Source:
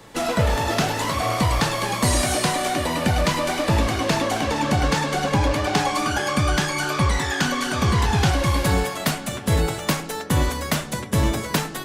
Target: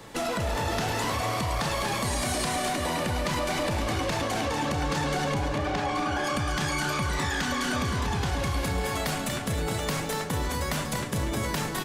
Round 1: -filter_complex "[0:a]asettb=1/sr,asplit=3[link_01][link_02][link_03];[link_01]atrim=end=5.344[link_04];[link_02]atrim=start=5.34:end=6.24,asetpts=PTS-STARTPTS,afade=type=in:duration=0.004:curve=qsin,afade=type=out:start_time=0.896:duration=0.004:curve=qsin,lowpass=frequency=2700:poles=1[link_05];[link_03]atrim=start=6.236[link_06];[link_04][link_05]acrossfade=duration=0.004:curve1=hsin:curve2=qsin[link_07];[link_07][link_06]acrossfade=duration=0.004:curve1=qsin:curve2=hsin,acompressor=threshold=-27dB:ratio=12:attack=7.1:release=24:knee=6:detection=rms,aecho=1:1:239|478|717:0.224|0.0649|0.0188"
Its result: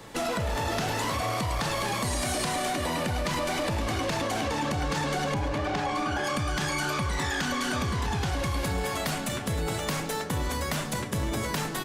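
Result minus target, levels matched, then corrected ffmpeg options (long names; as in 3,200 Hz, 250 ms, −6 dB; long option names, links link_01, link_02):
echo-to-direct −6.5 dB
-filter_complex "[0:a]asettb=1/sr,asplit=3[link_01][link_02][link_03];[link_01]atrim=end=5.344[link_04];[link_02]atrim=start=5.34:end=6.24,asetpts=PTS-STARTPTS,afade=type=in:duration=0.004:curve=qsin,afade=type=out:start_time=0.896:duration=0.004:curve=qsin,lowpass=frequency=2700:poles=1[link_05];[link_03]atrim=start=6.236[link_06];[link_04][link_05]acrossfade=duration=0.004:curve1=hsin:curve2=qsin[link_07];[link_07][link_06]acrossfade=duration=0.004:curve1=qsin:curve2=hsin,acompressor=threshold=-27dB:ratio=12:attack=7.1:release=24:knee=6:detection=rms,aecho=1:1:239|478|717|956:0.473|0.137|0.0398|0.0115"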